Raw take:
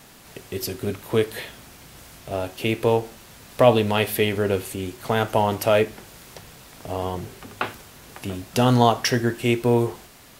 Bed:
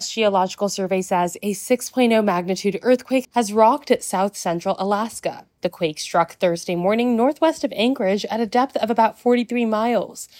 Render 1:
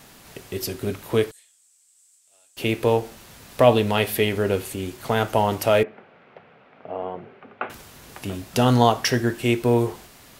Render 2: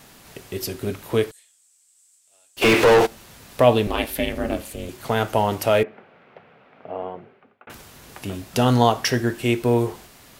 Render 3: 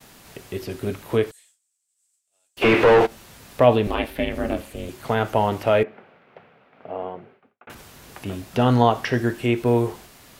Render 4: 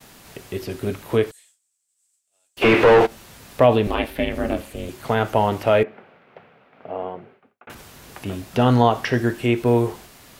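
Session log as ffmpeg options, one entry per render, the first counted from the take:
ffmpeg -i in.wav -filter_complex "[0:a]asettb=1/sr,asplit=3[link_01][link_02][link_03];[link_01]atrim=end=1.314[link_04];[link_02]atrim=start=1.31:end=2.57,asetpts=PTS-STARTPTS,afade=type=in:duration=0.004:curve=qsin,afade=type=out:start_time=1.256:duration=0.004:curve=qsin,bandpass=frequency=7900:width_type=q:width=6.5[link_05];[link_03]atrim=start=2.566[link_06];[link_04][link_05]acrossfade=duration=0.004:curve1=hsin:curve2=qsin[link_07];[link_07][link_06]acrossfade=duration=0.004:curve1=qsin:curve2=hsin,asettb=1/sr,asplit=3[link_08][link_09][link_10];[link_08]atrim=end=5.834[link_11];[link_09]atrim=start=5.83:end=7.7,asetpts=PTS-STARTPTS,afade=type=in:duration=0.004:curve=qsin,afade=type=out:start_time=1.866:duration=0.004:curve=qsin,highpass=260,equalizer=frequency=320:width_type=q:width=4:gain=-8,equalizer=frequency=1000:width_type=q:width=4:gain=-6,equalizer=frequency=1800:width_type=q:width=4:gain=-6,lowpass=frequency=2200:width=0.5412,lowpass=frequency=2200:width=1.3066[link_12];[link_10]atrim=start=7.696[link_13];[link_11][link_12]acrossfade=duration=0.004:curve1=hsin:curve2=qsin[link_14];[link_14][link_13]acrossfade=duration=0.004:curve1=qsin:curve2=hsin" out.wav
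ffmpeg -i in.wav -filter_complex "[0:a]asplit=3[link_01][link_02][link_03];[link_01]afade=type=out:start_time=2.61:duration=0.02[link_04];[link_02]asplit=2[link_05][link_06];[link_06]highpass=frequency=720:poles=1,volume=34dB,asoftclip=type=tanh:threshold=-6.5dB[link_07];[link_05][link_07]amix=inputs=2:normalize=0,lowpass=frequency=2600:poles=1,volume=-6dB,afade=type=in:start_time=2.61:duration=0.02,afade=type=out:start_time=3.05:duration=0.02[link_08];[link_03]afade=type=in:start_time=3.05:duration=0.02[link_09];[link_04][link_08][link_09]amix=inputs=3:normalize=0,asettb=1/sr,asplit=3[link_10][link_11][link_12];[link_10]atrim=end=3.874[link_13];[link_11]atrim=start=3.87:end=4.89,asetpts=PTS-STARTPTS,afade=type=in:duration=0.004:curve=qsin,afade=type=out:start_time=1.016:duration=0.004:curve=qsin,aeval=exprs='val(0)*sin(2*PI*170*n/s)':channel_layout=same[link_14];[link_12]atrim=start=4.886[link_15];[link_13][link_14]acrossfade=duration=0.004:curve1=hsin:curve2=qsin[link_16];[link_16][link_15]acrossfade=duration=0.004:curve1=qsin:curve2=hsin,asplit=2[link_17][link_18];[link_17]atrim=end=7.67,asetpts=PTS-STARTPTS,afade=type=out:start_time=7:duration=0.67[link_19];[link_18]atrim=start=7.67,asetpts=PTS-STARTPTS,afade=type=in:duration=0.004:curve=hsin[link_20];[link_19][link_20]concat=n=2:v=0:a=1" out.wav
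ffmpeg -i in.wav -filter_complex "[0:a]agate=range=-33dB:threshold=-49dB:ratio=3:detection=peak,acrossover=split=3200[link_01][link_02];[link_02]acompressor=threshold=-44dB:ratio=4:attack=1:release=60[link_03];[link_01][link_03]amix=inputs=2:normalize=0" out.wav
ffmpeg -i in.wav -af "volume=1.5dB,alimiter=limit=-3dB:level=0:latency=1" out.wav

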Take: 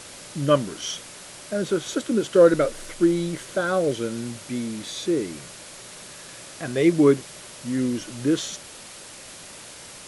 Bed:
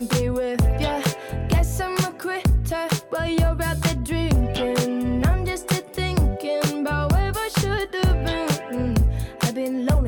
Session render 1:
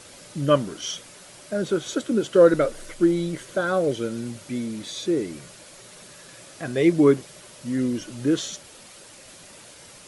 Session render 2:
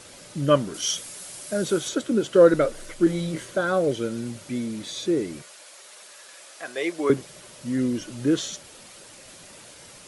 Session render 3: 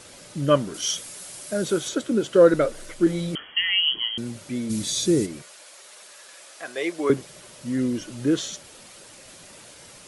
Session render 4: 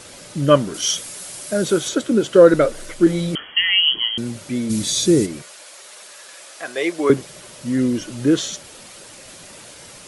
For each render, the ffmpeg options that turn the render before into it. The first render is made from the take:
ffmpeg -i in.wav -af "afftdn=noise_reduction=6:noise_floor=-42" out.wav
ffmpeg -i in.wav -filter_complex "[0:a]asettb=1/sr,asplit=3[link_01][link_02][link_03];[link_01]atrim=end=0.744[link_04];[link_02]atrim=start=0.74:end=1.89,asetpts=PTS-STARTPTS,afade=type=in:duration=0.004:curve=qsin,afade=type=out:start_time=1.146:duration=0.004:curve=qsin,aemphasis=mode=production:type=50kf[link_05];[link_03]atrim=start=1.886[link_06];[link_04][link_05]acrossfade=duration=0.004:curve1=hsin:curve2=qsin[link_07];[link_07][link_06]acrossfade=duration=0.004:curve1=qsin:curve2=hsin,asettb=1/sr,asplit=3[link_08][link_09][link_10];[link_08]atrim=end=3.044[link_11];[link_09]atrim=start=3.04:end=3.51,asetpts=PTS-STARTPTS,afade=type=in:duration=0.004:curve=qsin,afade=type=out:start_time=0.466:duration=0.004:curve=qsin,asplit=2[link_12][link_13];[link_13]adelay=25,volume=-3.5dB[link_14];[link_12][link_14]amix=inputs=2:normalize=0,atrim=end_sample=20727[link_15];[link_10]atrim=start=3.506[link_16];[link_11][link_15]acrossfade=duration=0.004:curve1=hsin:curve2=qsin[link_17];[link_17][link_16]acrossfade=duration=0.004:curve1=qsin:curve2=hsin,asettb=1/sr,asplit=3[link_18][link_19][link_20];[link_18]atrim=end=5.424[link_21];[link_19]atrim=start=5.42:end=7.1,asetpts=PTS-STARTPTS,afade=type=in:duration=0.004:curve=qsin,afade=type=out:start_time=1.676:duration=0.004:curve=qsin,highpass=620[link_22];[link_20]atrim=start=7.096[link_23];[link_21][link_22]acrossfade=duration=0.004:curve1=hsin:curve2=qsin[link_24];[link_24][link_23]acrossfade=duration=0.004:curve1=qsin:curve2=hsin" out.wav
ffmpeg -i in.wav -filter_complex "[0:a]asettb=1/sr,asplit=3[link_01][link_02][link_03];[link_01]atrim=end=3.354[link_04];[link_02]atrim=start=3.35:end=4.18,asetpts=PTS-STARTPTS,afade=type=in:duration=0.004:curve=qsin,afade=type=out:start_time=0.826:duration=0.004:curve=qsin,lowpass=frequency=2900:width_type=q:width=0.5098,lowpass=frequency=2900:width_type=q:width=0.6013,lowpass=frequency=2900:width_type=q:width=0.9,lowpass=frequency=2900:width_type=q:width=2.563,afreqshift=-3400[link_05];[link_03]atrim=start=4.176[link_06];[link_04][link_05]acrossfade=duration=0.004:curve1=hsin:curve2=qsin[link_07];[link_07][link_06]acrossfade=duration=0.004:curve1=qsin:curve2=hsin,asplit=3[link_08][link_09][link_10];[link_08]afade=type=out:start_time=4.69:duration=0.02[link_11];[link_09]bass=frequency=250:gain=11,treble=frequency=4000:gain=13,afade=type=in:start_time=4.69:duration=0.02,afade=type=out:start_time=5.25:duration=0.02[link_12];[link_10]afade=type=in:start_time=5.25:duration=0.02[link_13];[link_11][link_12][link_13]amix=inputs=3:normalize=0" out.wav
ffmpeg -i in.wav -af "volume=5.5dB,alimiter=limit=-1dB:level=0:latency=1" out.wav

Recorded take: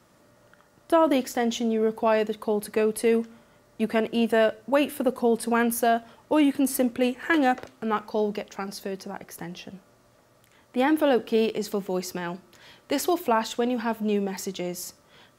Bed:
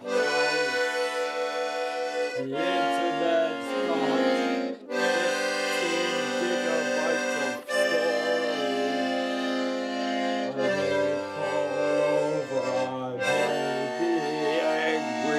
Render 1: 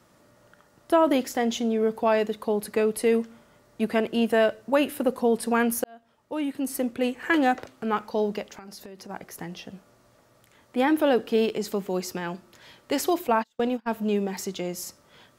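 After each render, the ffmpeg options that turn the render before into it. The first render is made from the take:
ffmpeg -i in.wav -filter_complex "[0:a]asplit=3[link_01][link_02][link_03];[link_01]afade=type=out:start_time=8.54:duration=0.02[link_04];[link_02]acompressor=threshold=-38dB:ratio=12:attack=3.2:release=140:knee=1:detection=peak,afade=type=in:start_time=8.54:duration=0.02,afade=type=out:start_time=9.09:duration=0.02[link_05];[link_03]afade=type=in:start_time=9.09:duration=0.02[link_06];[link_04][link_05][link_06]amix=inputs=3:normalize=0,asplit=3[link_07][link_08][link_09];[link_07]afade=type=out:start_time=13.27:duration=0.02[link_10];[link_08]agate=range=-35dB:threshold=-27dB:ratio=16:release=100:detection=peak,afade=type=in:start_time=13.27:duration=0.02,afade=type=out:start_time=13.9:duration=0.02[link_11];[link_09]afade=type=in:start_time=13.9:duration=0.02[link_12];[link_10][link_11][link_12]amix=inputs=3:normalize=0,asplit=2[link_13][link_14];[link_13]atrim=end=5.84,asetpts=PTS-STARTPTS,afade=type=out:start_time=5.836:duration=0.004:curve=hsin[link_15];[link_14]atrim=start=5.84,asetpts=PTS-STARTPTS,afade=type=in:duration=1.49[link_16];[link_15][link_16]concat=n=2:v=0:a=1" out.wav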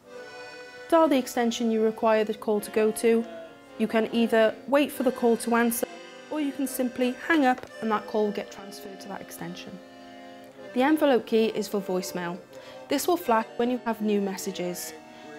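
ffmpeg -i in.wav -i bed.wav -filter_complex "[1:a]volume=-17.5dB[link_01];[0:a][link_01]amix=inputs=2:normalize=0" out.wav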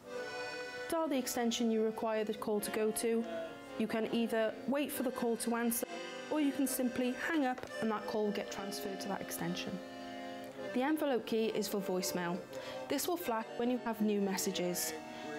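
ffmpeg -i in.wav -af "acompressor=threshold=-26dB:ratio=6,alimiter=level_in=1.5dB:limit=-24dB:level=0:latency=1:release=93,volume=-1.5dB" out.wav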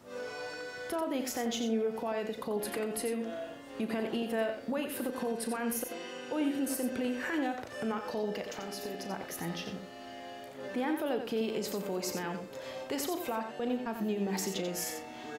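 ffmpeg -i in.wav -filter_complex "[0:a]asplit=2[link_01][link_02];[link_02]adelay=36,volume=-12dB[link_03];[link_01][link_03]amix=inputs=2:normalize=0,aecho=1:1:89:0.422" out.wav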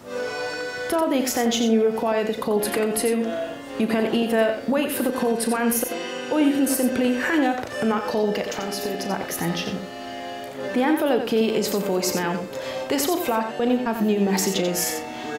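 ffmpeg -i in.wav -af "volume=12dB" out.wav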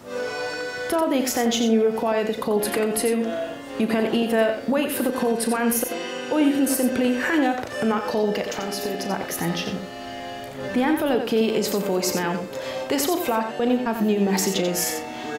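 ffmpeg -i in.wav -filter_complex "[0:a]asettb=1/sr,asplit=3[link_01][link_02][link_03];[link_01]atrim=end=9.664[link_04];[link_02]atrim=start=9.66:end=11.15,asetpts=PTS-STARTPTS,afade=type=in:duration=0.004:curve=qsin,afade=type=out:start_time=1.486:duration=0.004:curve=qsin,asubboost=boost=7.5:cutoff=180[link_05];[link_03]atrim=start=11.146[link_06];[link_04][link_05]acrossfade=duration=0.004:curve1=hsin:curve2=qsin[link_07];[link_07][link_06]acrossfade=duration=0.004:curve1=qsin:curve2=hsin" out.wav

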